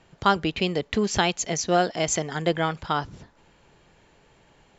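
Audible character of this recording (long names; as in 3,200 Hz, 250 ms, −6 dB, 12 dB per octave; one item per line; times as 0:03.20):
background noise floor −60 dBFS
spectral slope −3.5 dB per octave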